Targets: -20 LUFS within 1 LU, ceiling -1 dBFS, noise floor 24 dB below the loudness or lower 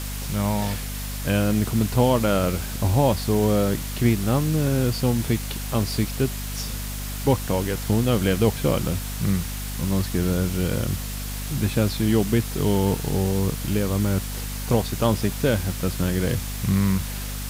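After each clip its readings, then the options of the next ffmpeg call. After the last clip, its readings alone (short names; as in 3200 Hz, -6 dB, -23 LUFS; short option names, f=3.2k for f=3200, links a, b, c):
hum 50 Hz; harmonics up to 250 Hz; hum level -29 dBFS; noise floor -30 dBFS; noise floor target -48 dBFS; loudness -23.5 LUFS; peak -7.0 dBFS; loudness target -20.0 LUFS
-> -af "bandreject=f=50:t=h:w=6,bandreject=f=100:t=h:w=6,bandreject=f=150:t=h:w=6,bandreject=f=200:t=h:w=6,bandreject=f=250:t=h:w=6"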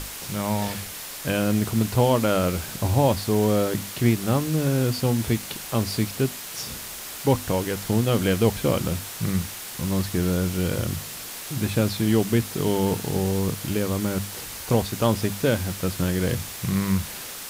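hum none; noise floor -36 dBFS; noise floor target -49 dBFS
-> -af "afftdn=nr=13:nf=-36"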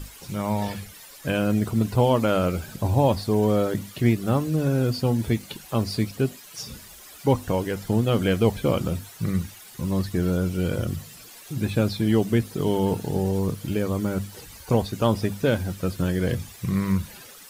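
noise floor -46 dBFS; noise floor target -49 dBFS
-> -af "afftdn=nr=6:nf=-46"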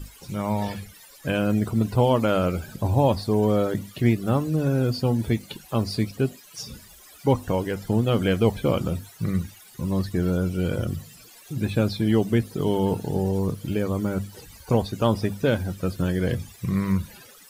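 noise floor -49 dBFS; loudness -24.5 LUFS; peak -8.5 dBFS; loudness target -20.0 LUFS
-> -af "volume=4.5dB"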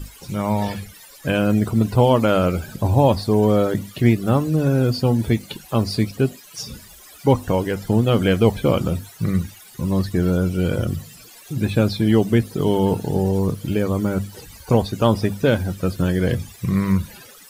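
loudness -20.0 LUFS; peak -4.0 dBFS; noise floor -45 dBFS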